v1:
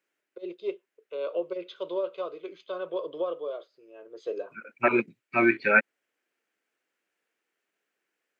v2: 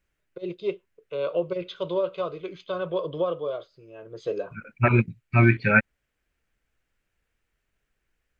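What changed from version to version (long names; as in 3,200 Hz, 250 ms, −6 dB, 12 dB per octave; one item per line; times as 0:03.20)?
second voice −5.0 dB
master: remove four-pole ladder high-pass 260 Hz, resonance 25%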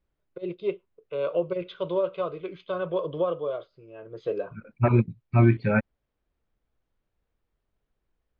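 second voice: add flat-topped bell 2,000 Hz −10.5 dB 1.3 octaves
master: add low-pass filter 3,000 Hz 12 dB per octave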